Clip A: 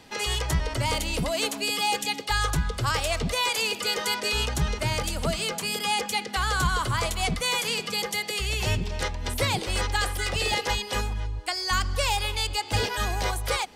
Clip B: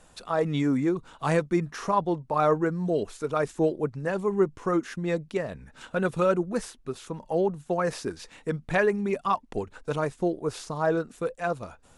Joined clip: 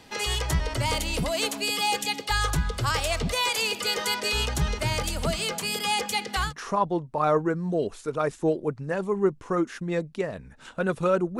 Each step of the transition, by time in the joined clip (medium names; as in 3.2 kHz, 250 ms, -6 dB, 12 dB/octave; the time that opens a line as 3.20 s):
clip A
6.48 s: go over to clip B from 1.64 s, crossfade 0.10 s